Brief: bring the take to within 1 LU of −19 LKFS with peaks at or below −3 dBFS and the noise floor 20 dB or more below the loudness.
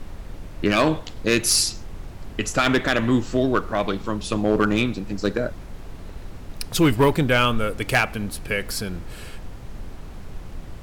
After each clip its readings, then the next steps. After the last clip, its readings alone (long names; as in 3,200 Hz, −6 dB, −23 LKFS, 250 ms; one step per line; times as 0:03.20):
share of clipped samples 0.4%; peaks flattened at −10.5 dBFS; background noise floor −38 dBFS; target noise floor −42 dBFS; integrated loudness −22.0 LKFS; sample peak −10.5 dBFS; target loudness −19.0 LKFS
→ clipped peaks rebuilt −10.5 dBFS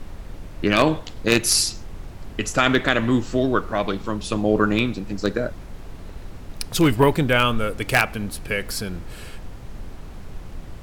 share of clipped samples 0.0%; background noise floor −38 dBFS; target noise floor −42 dBFS
→ noise reduction from a noise print 6 dB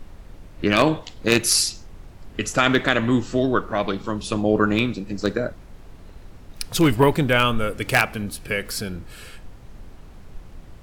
background noise floor −44 dBFS; integrated loudness −21.5 LKFS; sample peak −1.5 dBFS; target loudness −19.0 LKFS
→ level +2.5 dB
brickwall limiter −3 dBFS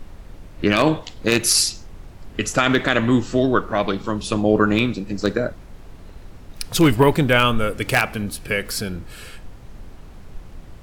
integrated loudness −19.5 LKFS; sample peak −3.0 dBFS; background noise floor −42 dBFS